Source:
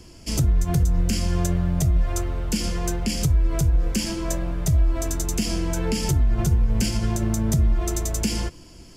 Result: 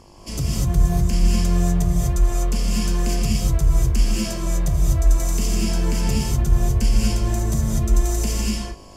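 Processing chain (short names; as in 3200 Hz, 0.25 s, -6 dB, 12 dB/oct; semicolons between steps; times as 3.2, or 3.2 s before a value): buzz 50 Hz, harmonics 23, -48 dBFS -1 dB/oct; non-linear reverb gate 0.27 s rising, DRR -4 dB; gain -4.5 dB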